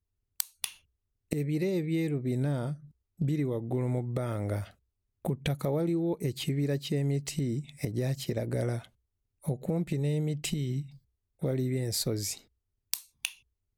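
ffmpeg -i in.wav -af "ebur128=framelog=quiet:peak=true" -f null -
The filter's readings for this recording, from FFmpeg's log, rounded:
Integrated loudness:
  I:         -32.1 LUFS
  Threshold: -42.5 LUFS
Loudness range:
  LRA:         2.2 LU
  Threshold: -52.5 LUFS
  LRA low:   -33.5 LUFS
  LRA high:  -31.3 LUFS
True peak:
  Peak:      -11.0 dBFS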